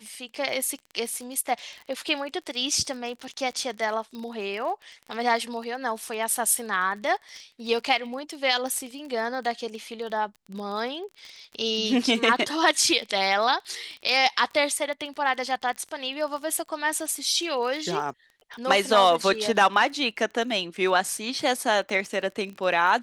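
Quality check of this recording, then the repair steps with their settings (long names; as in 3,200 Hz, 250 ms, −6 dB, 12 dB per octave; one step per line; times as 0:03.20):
surface crackle 25 per second −33 dBFS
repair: click removal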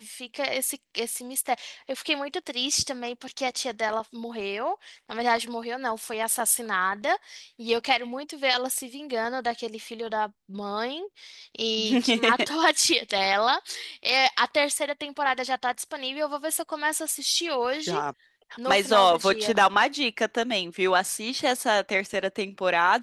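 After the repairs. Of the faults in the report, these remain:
none of them is left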